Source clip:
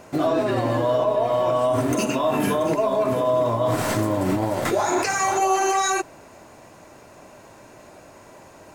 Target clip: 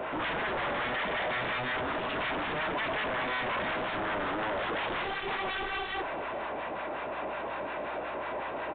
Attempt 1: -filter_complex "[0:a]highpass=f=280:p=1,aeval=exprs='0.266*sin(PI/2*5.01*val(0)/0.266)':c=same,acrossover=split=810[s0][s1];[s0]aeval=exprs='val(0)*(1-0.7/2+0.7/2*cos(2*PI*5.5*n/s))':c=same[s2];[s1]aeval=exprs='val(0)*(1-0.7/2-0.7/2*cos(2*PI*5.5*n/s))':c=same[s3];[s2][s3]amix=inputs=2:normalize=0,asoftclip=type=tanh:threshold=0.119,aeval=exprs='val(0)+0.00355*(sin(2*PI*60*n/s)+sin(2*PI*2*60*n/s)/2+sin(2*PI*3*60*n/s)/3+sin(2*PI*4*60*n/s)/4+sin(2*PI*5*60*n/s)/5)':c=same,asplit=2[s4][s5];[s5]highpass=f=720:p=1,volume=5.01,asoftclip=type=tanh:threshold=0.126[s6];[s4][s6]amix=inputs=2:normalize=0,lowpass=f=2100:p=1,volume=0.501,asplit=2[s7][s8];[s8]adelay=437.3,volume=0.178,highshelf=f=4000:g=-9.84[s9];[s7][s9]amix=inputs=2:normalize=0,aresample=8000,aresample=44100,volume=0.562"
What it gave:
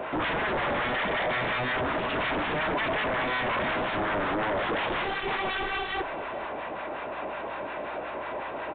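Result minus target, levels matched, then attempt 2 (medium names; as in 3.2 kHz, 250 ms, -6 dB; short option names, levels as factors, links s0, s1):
saturation: distortion -6 dB
-filter_complex "[0:a]highpass=f=280:p=1,aeval=exprs='0.266*sin(PI/2*5.01*val(0)/0.266)':c=same,acrossover=split=810[s0][s1];[s0]aeval=exprs='val(0)*(1-0.7/2+0.7/2*cos(2*PI*5.5*n/s))':c=same[s2];[s1]aeval=exprs='val(0)*(1-0.7/2-0.7/2*cos(2*PI*5.5*n/s))':c=same[s3];[s2][s3]amix=inputs=2:normalize=0,asoftclip=type=tanh:threshold=0.0398,aeval=exprs='val(0)+0.00355*(sin(2*PI*60*n/s)+sin(2*PI*2*60*n/s)/2+sin(2*PI*3*60*n/s)/3+sin(2*PI*4*60*n/s)/4+sin(2*PI*5*60*n/s)/5)':c=same,asplit=2[s4][s5];[s5]highpass=f=720:p=1,volume=5.01,asoftclip=type=tanh:threshold=0.126[s6];[s4][s6]amix=inputs=2:normalize=0,lowpass=f=2100:p=1,volume=0.501,asplit=2[s7][s8];[s8]adelay=437.3,volume=0.178,highshelf=f=4000:g=-9.84[s9];[s7][s9]amix=inputs=2:normalize=0,aresample=8000,aresample=44100,volume=0.562"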